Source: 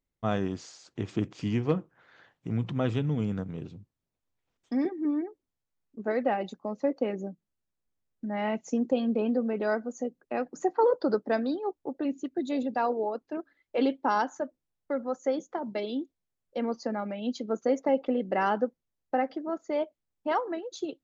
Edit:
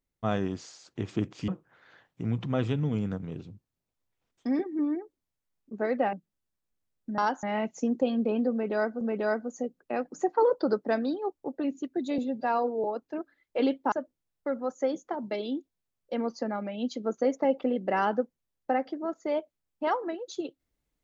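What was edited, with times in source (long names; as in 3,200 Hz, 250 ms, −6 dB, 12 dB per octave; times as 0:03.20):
0:01.48–0:01.74: remove
0:06.39–0:07.28: remove
0:09.42–0:09.91: repeat, 2 plays
0:12.59–0:13.03: time-stretch 1.5×
0:14.11–0:14.36: move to 0:08.33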